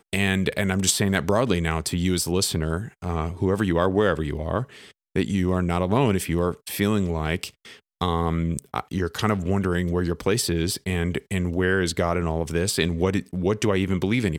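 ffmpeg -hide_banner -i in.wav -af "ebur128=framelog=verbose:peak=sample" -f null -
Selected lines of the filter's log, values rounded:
Integrated loudness:
  I:         -24.1 LUFS
  Threshold: -34.2 LUFS
Loudness range:
  LRA:         2.4 LU
  Threshold: -44.5 LUFS
  LRA low:   -25.9 LUFS
  LRA high:  -23.5 LUFS
Sample peak:
  Peak:       -4.8 dBFS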